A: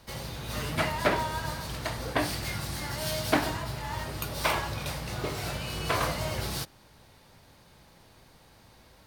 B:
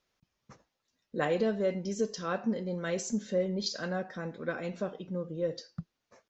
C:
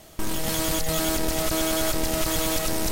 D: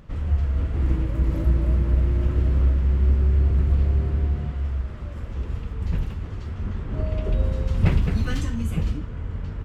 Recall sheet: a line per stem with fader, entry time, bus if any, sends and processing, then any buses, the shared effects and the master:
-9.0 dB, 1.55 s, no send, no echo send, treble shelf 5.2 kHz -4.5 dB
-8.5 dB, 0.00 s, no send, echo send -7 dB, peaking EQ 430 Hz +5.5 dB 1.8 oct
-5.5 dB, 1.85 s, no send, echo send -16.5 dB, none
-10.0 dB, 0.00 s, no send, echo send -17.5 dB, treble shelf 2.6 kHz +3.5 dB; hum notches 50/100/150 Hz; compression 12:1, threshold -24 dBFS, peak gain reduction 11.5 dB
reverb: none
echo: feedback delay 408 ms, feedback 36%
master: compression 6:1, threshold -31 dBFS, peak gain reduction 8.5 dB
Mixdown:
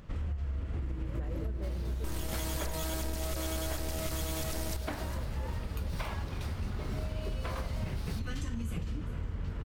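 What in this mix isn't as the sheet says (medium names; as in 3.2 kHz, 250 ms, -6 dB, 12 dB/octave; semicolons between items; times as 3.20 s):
stem B -8.5 dB -> -19.5 dB; stem D -10.0 dB -> -3.0 dB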